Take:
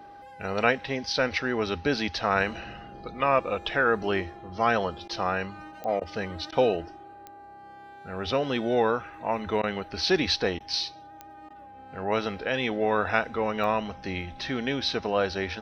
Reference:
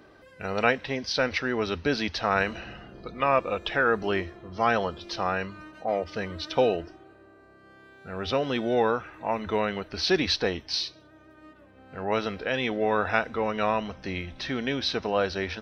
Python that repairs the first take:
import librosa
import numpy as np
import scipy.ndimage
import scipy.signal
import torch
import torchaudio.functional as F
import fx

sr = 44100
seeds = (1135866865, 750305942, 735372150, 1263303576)

y = fx.fix_declick_ar(x, sr, threshold=10.0)
y = fx.notch(y, sr, hz=810.0, q=30.0)
y = fx.fix_interpolate(y, sr, at_s=(5.08, 6.0, 6.51, 9.62, 10.59, 11.49), length_ms=12.0)